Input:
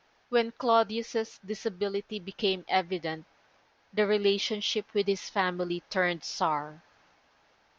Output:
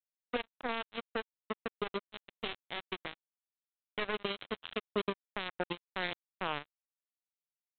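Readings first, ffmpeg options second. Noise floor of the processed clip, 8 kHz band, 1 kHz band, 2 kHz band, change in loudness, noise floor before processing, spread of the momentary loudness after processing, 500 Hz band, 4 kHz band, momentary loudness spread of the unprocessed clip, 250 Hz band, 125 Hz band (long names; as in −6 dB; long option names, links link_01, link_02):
below −85 dBFS, can't be measured, −10.5 dB, −6.0 dB, −10.0 dB, −67 dBFS, 6 LU, −12.0 dB, −8.5 dB, 9 LU, −10.0 dB, −9.5 dB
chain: -af "alimiter=limit=-22dB:level=0:latency=1:release=42,aresample=8000,acrusher=bits=3:mix=0:aa=0.5,aresample=44100"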